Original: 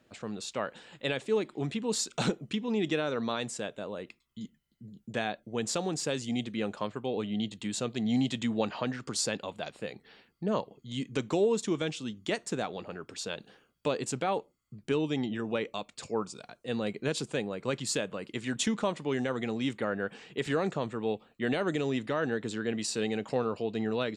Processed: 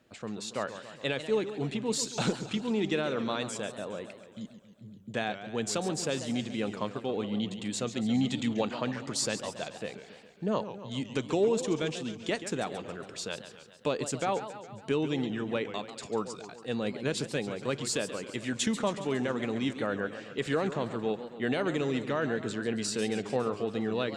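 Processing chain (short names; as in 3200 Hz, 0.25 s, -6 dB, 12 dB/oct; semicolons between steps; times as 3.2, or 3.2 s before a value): added harmonics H 6 -41 dB, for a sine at -15.5 dBFS; warbling echo 0.138 s, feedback 61%, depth 192 cents, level -11.5 dB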